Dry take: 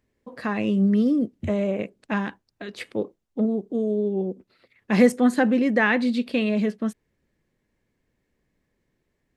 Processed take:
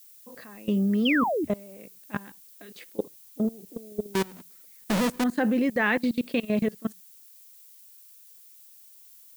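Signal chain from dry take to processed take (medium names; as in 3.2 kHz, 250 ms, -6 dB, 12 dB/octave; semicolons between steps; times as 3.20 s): 4.14–5.24 s: square wave that keeps the level; peaking EQ 100 Hz -14.5 dB 0.38 oct; hum notches 60/120/180 Hz; level held to a coarse grid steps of 23 dB; 1.05–1.45 s: painted sound fall 270–3400 Hz -26 dBFS; added noise violet -52 dBFS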